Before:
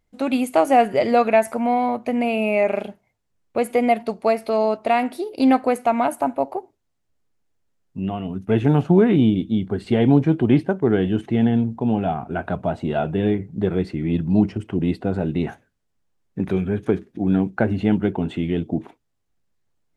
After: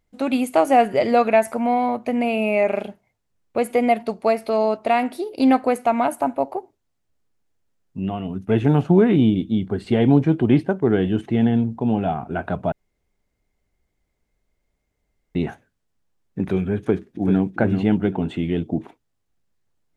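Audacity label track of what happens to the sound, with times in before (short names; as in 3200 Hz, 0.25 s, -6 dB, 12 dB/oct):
12.720000	15.350000	room tone
16.800000	17.450000	echo throw 0.39 s, feedback 25%, level -7.5 dB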